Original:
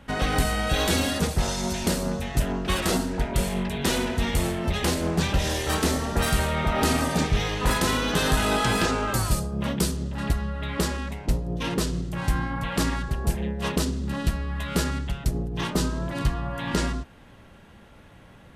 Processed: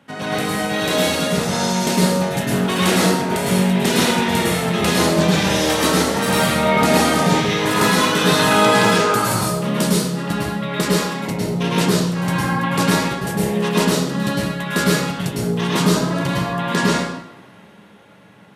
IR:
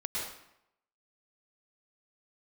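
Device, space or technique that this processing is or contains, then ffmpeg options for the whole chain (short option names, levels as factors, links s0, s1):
far laptop microphone: -filter_complex "[1:a]atrim=start_sample=2205[s0];[0:a][s0]afir=irnorm=-1:irlink=0,highpass=f=130:w=0.5412,highpass=f=130:w=1.3066,dynaudnorm=f=320:g=9:m=2.37"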